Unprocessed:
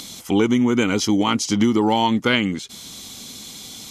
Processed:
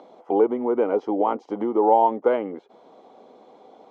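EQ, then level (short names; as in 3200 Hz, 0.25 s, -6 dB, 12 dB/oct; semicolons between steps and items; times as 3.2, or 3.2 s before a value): Butterworth band-pass 600 Hz, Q 1.4; +6.0 dB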